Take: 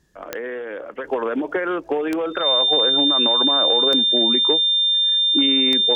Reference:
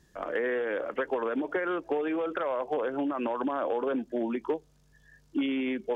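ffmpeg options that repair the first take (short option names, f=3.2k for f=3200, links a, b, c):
-af "adeclick=t=4,bandreject=f=3.6k:w=30,asetnsamples=n=441:p=0,asendcmd='1.04 volume volume -7dB',volume=0dB"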